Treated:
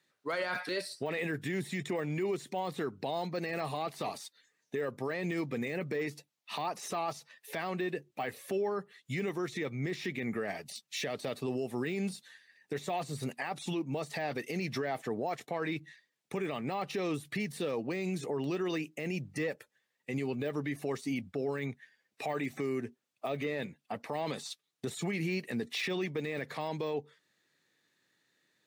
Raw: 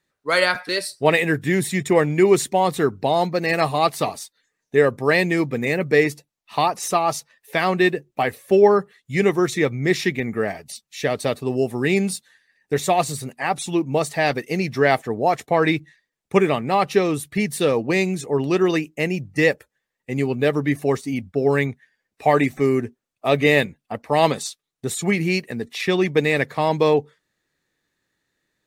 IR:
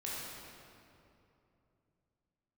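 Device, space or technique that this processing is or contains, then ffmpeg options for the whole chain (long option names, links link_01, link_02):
broadcast voice chain: -af "highpass=94,deesser=0.85,acompressor=threshold=-27dB:ratio=5,equalizer=frequency=3500:width_type=o:width=1.8:gain=4.5,alimiter=limit=-23.5dB:level=0:latency=1:release=13,highpass=110,volume=-2dB"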